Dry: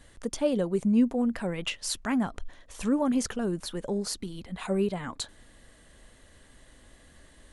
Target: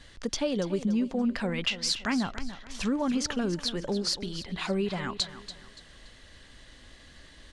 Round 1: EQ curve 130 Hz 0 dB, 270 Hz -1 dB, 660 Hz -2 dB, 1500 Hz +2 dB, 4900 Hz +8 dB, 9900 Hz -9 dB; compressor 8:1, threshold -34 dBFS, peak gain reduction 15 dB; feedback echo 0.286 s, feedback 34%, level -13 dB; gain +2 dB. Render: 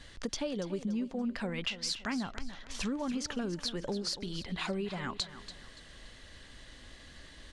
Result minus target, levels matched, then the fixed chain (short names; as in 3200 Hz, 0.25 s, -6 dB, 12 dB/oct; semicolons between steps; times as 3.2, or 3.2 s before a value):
compressor: peak gain reduction +7 dB
EQ curve 130 Hz 0 dB, 270 Hz -1 dB, 660 Hz -2 dB, 1500 Hz +2 dB, 4900 Hz +8 dB, 9900 Hz -9 dB; compressor 8:1, threshold -26 dBFS, peak gain reduction 8 dB; feedback echo 0.286 s, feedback 34%, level -13 dB; gain +2 dB